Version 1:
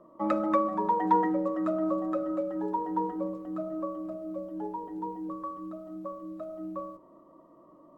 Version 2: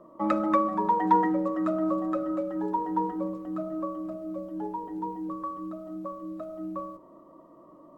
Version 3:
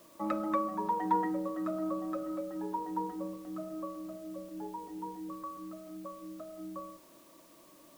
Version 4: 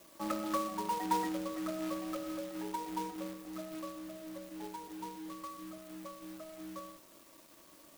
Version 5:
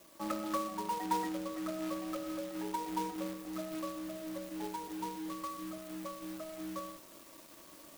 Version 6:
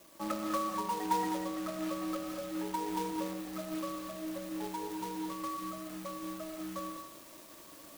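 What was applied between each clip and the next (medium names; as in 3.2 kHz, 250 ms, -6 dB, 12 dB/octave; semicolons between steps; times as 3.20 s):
dynamic bell 530 Hz, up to -4 dB, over -43 dBFS, Q 1.3; trim +3.5 dB
added noise white -55 dBFS; trim -7.5 dB
companded quantiser 4-bit; trim -3.5 dB
gain riding within 3 dB 2 s; trim +1 dB
gated-style reverb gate 240 ms rising, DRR 4.5 dB; trim +1 dB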